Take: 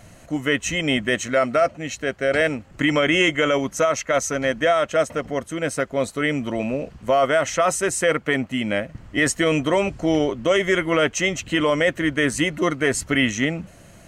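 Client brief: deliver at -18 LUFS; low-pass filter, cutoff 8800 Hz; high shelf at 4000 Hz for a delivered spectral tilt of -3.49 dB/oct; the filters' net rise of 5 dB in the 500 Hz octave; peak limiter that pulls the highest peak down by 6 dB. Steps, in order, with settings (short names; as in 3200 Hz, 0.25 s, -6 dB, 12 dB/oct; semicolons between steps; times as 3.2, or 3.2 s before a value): LPF 8800 Hz; bell 500 Hz +6 dB; high shelf 4000 Hz +7 dB; gain +2.5 dB; limiter -7.5 dBFS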